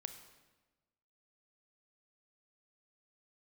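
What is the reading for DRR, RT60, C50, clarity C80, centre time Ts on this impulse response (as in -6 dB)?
8.0 dB, 1.2 s, 9.5 dB, 11.0 dB, 16 ms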